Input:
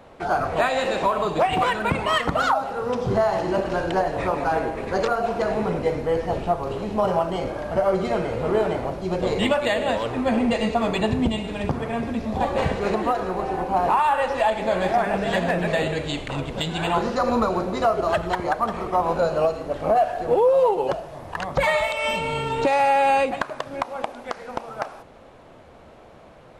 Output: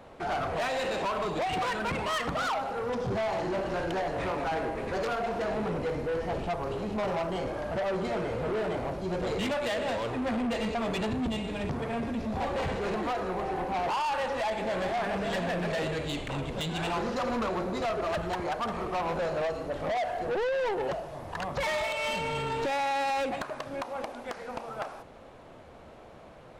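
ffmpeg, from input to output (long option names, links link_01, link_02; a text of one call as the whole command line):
ffmpeg -i in.wav -af "asoftclip=type=tanh:threshold=-24.5dB,volume=-2.5dB" out.wav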